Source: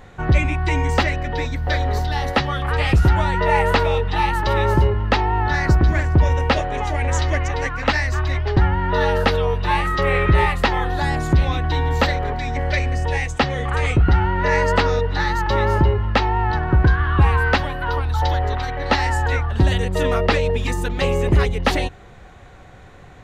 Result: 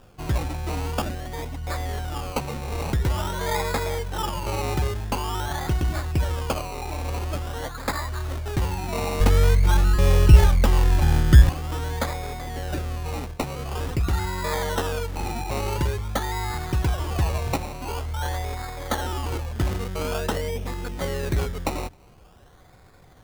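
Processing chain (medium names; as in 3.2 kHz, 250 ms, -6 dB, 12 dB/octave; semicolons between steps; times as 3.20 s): 9.20–11.49 s: tilt EQ -3.5 dB/octave; decimation with a swept rate 21×, swing 60% 0.47 Hz; trim -8.5 dB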